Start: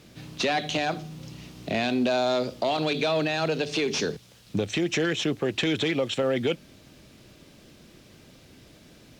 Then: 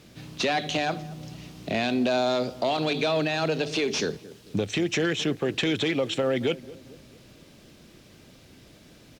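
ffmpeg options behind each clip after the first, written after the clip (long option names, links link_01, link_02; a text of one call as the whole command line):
ffmpeg -i in.wav -filter_complex "[0:a]asplit=2[link_01][link_02];[link_02]adelay=223,lowpass=frequency=820:poles=1,volume=-17dB,asplit=2[link_03][link_04];[link_04]adelay=223,lowpass=frequency=820:poles=1,volume=0.52,asplit=2[link_05][link_06];[link_06]adelay=223,lowpass=frequency=820:poles=1,volume=0.52,asplit=2[link_07][link_08];[link_08]adelay=223,lowpass=frequency=820:poles=1,volume=0.52,asplit=2[link_09][link_10];[link_10]adelay=223,lowpass=frequency=820:poles=1,volume=0.52[link_11];[link_01][link_03][link_05][link_07][link_09][link_11]amix=inputs=6:normalize=0" out.wav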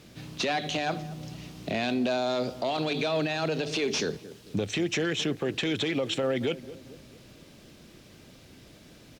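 ffmpeg -i in.wav -af "alimiter=limit=-19.5dB:level=0:latency=1:release=74" out.wav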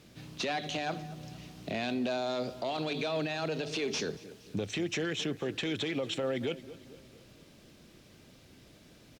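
ffmpeg -i in.wav -af "aecho=1:1:234|468|702|936:0.075|0.0442|0.0261|0.0154,volume=-5dB" out.wav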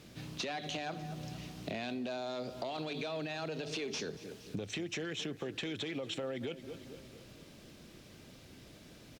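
ffmpeg -i in.wav -af "acompressor=threshold=-38dB:ratio=6,volume=2dB" out.wav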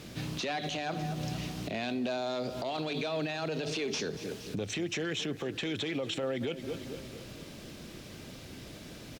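ffmpeg -i in.wav -af "alimiter=level_in=10dB:limit=-24dB:level=0:latency=1:release=97,volume=-10dB,volume=8.5dB" out.wav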